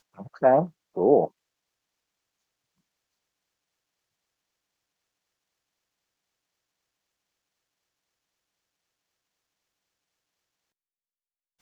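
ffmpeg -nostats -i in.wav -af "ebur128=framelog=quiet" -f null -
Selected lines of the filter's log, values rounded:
Integrated loudness:
  I:         -22.7 LUFS
  Threshold: -33.4 LUFS
Loudness range:
  LRA:        14.9 LU
  Threshold: -48.8 LUFS
  LRA low:   -41.9 LUFS
  LRA high:  -27.0 LUFS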